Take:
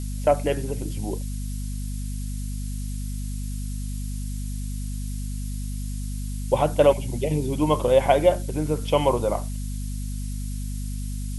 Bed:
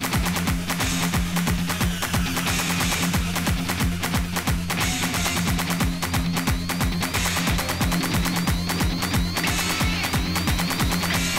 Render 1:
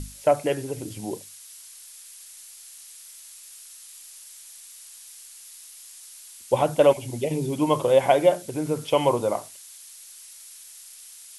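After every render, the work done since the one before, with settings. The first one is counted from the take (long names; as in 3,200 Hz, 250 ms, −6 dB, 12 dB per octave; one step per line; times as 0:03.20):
mains-hum notches 50/100/150/200/250 Hz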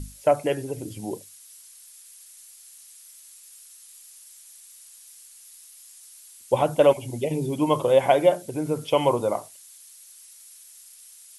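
broadband denoise 6 dB, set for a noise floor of −46 dBFS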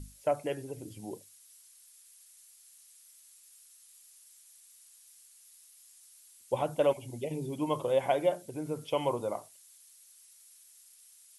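level −9.5 dB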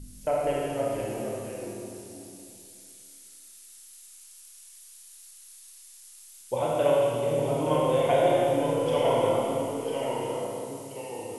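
delay with pitch and tempo change per echo 469 ms, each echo −1 semitone, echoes 2, each echo −6 dB
four-comb reverb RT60 2.5 s, combs from 25 ms, DRR −5.5 dB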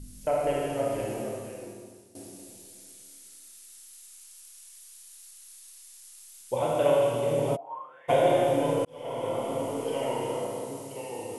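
0:01.10–0:02.15: fade out, to −15 dB
0:07.55–0:08.08: resonant band-pass 640 Hz → 1,900 Hz, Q 17
0:08.85–0:09.79: fade in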